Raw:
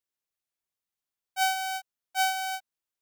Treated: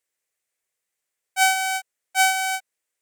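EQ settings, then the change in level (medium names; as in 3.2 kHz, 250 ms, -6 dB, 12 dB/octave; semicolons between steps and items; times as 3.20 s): ten-band graphic EQ 500 Hz +11 dB, 2 kHz +12 dB, 8 kHz +11 dB, 16 kHz +4 dB; 0.0 dB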